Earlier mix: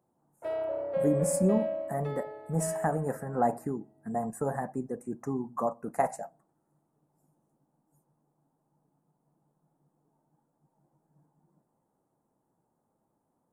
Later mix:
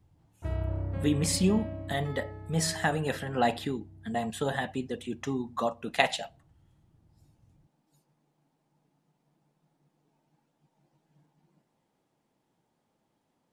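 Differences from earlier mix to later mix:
speech: remove Chebyshev band-stop filter 1,100–9,000 Hz, order 2
background: remove high-pass with resonance 540 Hz, resonance Q 6

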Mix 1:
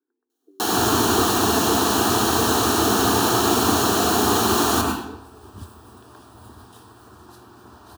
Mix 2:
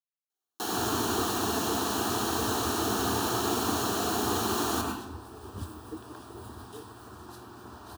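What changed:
speech: entry +1.65 s
first sound −10.0 dB

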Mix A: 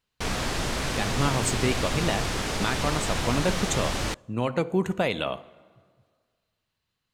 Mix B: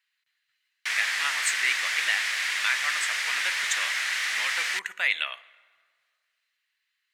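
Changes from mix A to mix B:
background: entry +0.65 s
master: add high-pass with resonance 1,900 Hz, resonance Q 3.6

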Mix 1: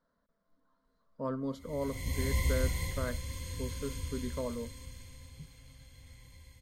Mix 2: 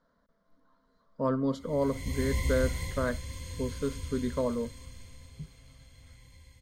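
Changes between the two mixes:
speech +7.0 dB
master: add parametric band 12,000 Hz −9.5 dB 0.28 octaves

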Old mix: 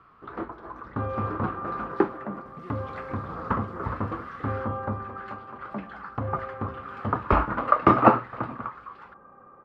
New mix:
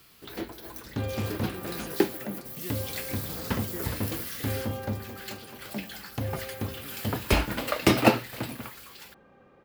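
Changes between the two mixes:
speech +6.0 dB
master: remove low-pass with resonance 1,200 Hz, resonance Q 5.9

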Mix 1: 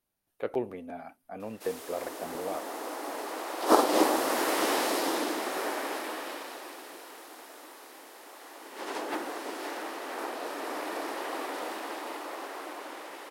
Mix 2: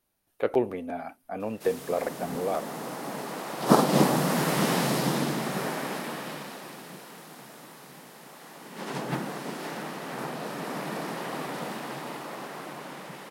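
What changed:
speech +6.5 dB
background: remove Chebyshev high-pass filter 300 Hz, order 4

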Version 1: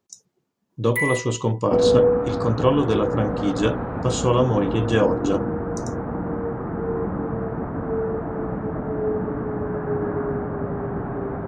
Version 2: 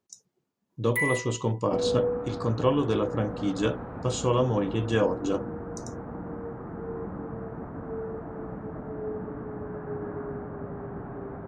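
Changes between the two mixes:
speech −5.0 dB
first sound −3.5 dB
second sound −10.0 dB

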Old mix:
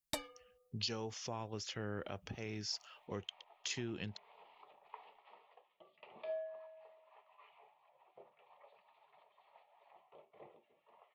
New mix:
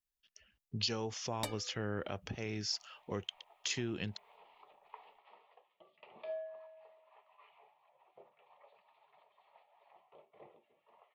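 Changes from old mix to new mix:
speech +4.0 dB
first sound: entry +1.30 s

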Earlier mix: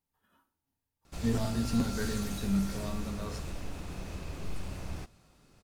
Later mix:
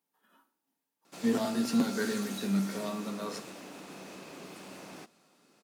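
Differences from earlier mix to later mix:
speech +4.5 dB
master: add high-pass filter 210 Hz 24 dB per octave

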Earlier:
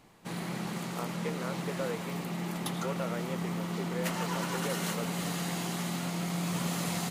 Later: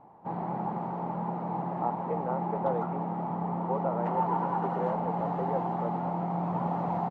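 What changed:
speech: entry +0.85 s
master: add low-pass with resonance 850 Hz, resonance Q 5.2

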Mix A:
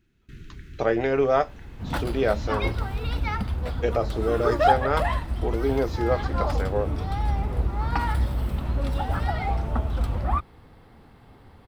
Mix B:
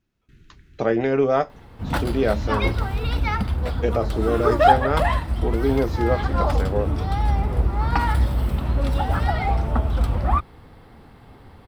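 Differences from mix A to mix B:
speech: add parametric band 200 Hz +7.5 dB 1.4 octaves
first sound −9.0 dB
second sound +4.5 dB

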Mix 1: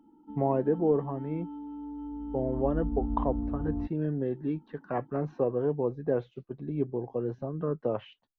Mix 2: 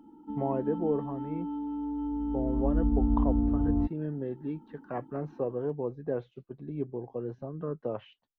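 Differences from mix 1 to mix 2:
speech −4.0 dB
background +6.0 dB

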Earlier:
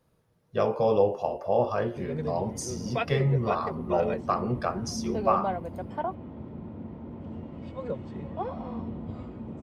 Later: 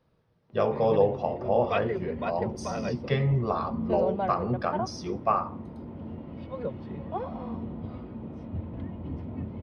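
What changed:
background: entry −1.25 s
master: add Savitzky-Golay smoothing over 15 samples

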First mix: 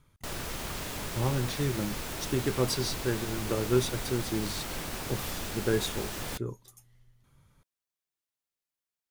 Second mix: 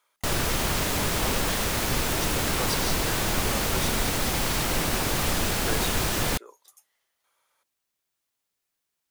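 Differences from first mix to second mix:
speech: add high-pass filter 560 Hz 24 dB per octave
background +11.0 dB

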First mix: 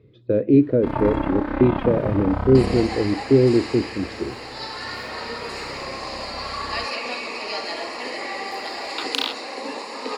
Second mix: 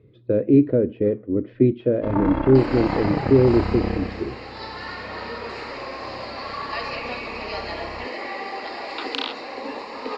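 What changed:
first sound: entry +1.20 s
master: add high-frequency loss of the air 170 metres

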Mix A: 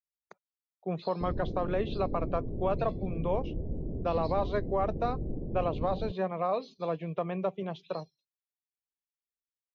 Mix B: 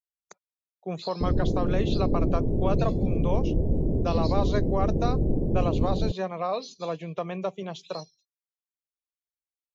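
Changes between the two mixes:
background +10.5 dB
master: remove high-frequency loss of the air 320 metres

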